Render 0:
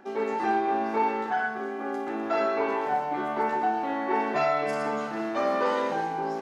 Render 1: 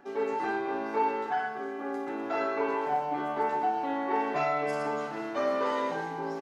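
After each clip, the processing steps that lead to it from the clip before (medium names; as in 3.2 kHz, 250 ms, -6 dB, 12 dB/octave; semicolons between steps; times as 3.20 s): comb 7 ms, depth 50%; trim -4 dB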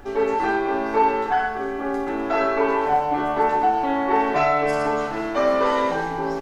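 added noise brown -52 dBFS; trim +9 dB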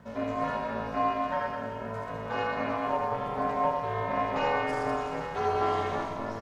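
reverse bouncing-ball echo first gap 80 ms, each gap 1.5×, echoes 5; ring modulator 170 Hz; trim -8 dB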